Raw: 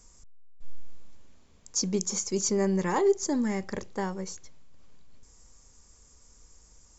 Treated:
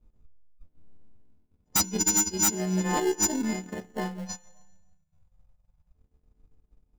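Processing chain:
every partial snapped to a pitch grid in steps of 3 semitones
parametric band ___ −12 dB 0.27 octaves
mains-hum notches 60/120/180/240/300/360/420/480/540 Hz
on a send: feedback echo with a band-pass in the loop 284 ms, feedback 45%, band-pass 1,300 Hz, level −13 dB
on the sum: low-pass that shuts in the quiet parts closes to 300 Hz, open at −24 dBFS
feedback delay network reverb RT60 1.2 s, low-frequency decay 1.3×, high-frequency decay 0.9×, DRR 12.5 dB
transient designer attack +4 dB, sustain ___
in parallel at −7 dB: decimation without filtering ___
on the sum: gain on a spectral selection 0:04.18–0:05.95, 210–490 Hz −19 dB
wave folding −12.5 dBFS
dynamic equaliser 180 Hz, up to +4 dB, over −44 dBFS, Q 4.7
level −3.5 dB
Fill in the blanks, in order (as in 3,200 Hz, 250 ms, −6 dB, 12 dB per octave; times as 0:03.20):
1,400 Hz, −9 dB, 36×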